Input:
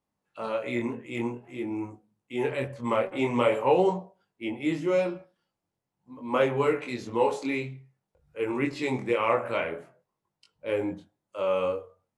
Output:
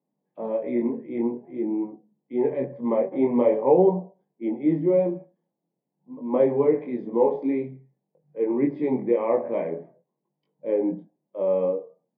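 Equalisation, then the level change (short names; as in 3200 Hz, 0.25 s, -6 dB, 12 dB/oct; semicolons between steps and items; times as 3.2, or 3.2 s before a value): running mean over 32 samples; elliptic high-pass 150 Hz, stop band 40 dB; air absorption 290 m; +7.5 dB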